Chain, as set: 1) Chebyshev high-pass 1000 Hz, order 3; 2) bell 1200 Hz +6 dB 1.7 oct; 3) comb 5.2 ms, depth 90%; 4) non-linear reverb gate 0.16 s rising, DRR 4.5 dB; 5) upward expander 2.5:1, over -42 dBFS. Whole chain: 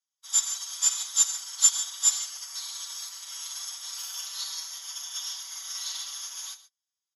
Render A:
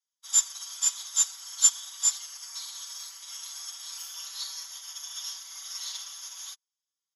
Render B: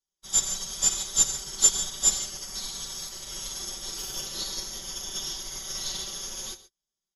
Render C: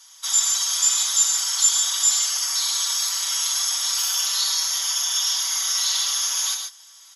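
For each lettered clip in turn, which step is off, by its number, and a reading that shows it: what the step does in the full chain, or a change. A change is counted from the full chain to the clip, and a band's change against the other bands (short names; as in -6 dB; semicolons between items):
4, momentary loudness spread change +3 LU; 1, 1 kHz band +1.5 dB; 5, 8 kHz band -4.5 dB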